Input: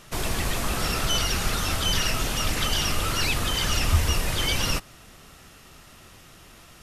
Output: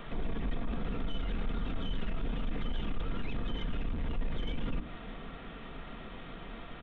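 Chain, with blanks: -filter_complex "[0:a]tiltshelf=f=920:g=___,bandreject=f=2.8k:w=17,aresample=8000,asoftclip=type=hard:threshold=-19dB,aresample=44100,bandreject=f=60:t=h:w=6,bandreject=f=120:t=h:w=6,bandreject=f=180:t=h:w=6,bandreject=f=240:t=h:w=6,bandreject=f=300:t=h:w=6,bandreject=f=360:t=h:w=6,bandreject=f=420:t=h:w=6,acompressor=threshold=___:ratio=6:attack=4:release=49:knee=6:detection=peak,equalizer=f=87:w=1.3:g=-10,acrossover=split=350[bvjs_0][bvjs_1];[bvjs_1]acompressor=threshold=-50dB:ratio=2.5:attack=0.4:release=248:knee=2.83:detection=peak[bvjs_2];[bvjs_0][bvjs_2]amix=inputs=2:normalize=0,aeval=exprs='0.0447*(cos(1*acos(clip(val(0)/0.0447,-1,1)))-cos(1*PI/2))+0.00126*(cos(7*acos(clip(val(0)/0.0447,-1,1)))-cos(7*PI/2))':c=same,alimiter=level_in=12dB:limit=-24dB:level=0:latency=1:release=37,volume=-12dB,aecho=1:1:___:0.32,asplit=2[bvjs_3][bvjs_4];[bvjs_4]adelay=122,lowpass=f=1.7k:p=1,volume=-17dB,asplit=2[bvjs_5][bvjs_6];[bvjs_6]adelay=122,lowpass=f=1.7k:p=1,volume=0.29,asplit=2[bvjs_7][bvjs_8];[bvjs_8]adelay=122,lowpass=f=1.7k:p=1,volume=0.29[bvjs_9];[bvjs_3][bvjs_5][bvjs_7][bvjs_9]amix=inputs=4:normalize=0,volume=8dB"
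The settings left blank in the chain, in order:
3.5, -31dB, 4.3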